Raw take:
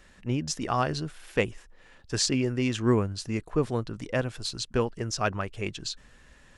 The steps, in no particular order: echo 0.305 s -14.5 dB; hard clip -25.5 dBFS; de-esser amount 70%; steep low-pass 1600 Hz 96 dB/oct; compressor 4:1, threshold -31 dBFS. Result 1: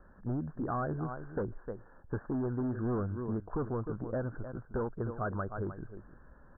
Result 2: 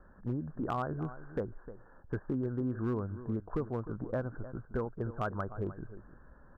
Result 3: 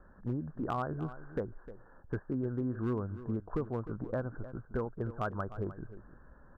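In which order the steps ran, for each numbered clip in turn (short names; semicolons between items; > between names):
echo > hard clip > compressor > steep low-pass > de-esser; de-esser > steep low-pass > compressor > echo > hard clip; compressor > de-esser > steep low-pass > hard clip > echo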